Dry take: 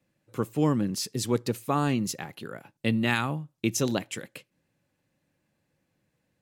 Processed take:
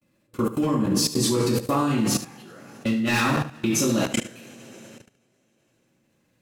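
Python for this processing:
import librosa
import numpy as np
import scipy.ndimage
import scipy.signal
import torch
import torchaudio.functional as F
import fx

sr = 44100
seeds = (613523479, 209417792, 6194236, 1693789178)

p1 = 10.0 ** (-14.0 / 20.0) * (np.abs((x / 10.0 ** (-14.0 / 20.0) + 3.0) % 4.0 - 2.0) - 1.0)
p2 = fx.rev_double_slope(p1, sr, seeds[0], early_s=0.54, late_s=3.1, knee_db=-17, drr_db=-9.5)
p3 = fx.level_steps(p2, sr, step_db=23)
p4 = p3 + fx.echo_single(p3, sr, ms=74, db=-13.0, dry=0)
y = F.gain(torch.from_numpy(p4), 1.5).numpy()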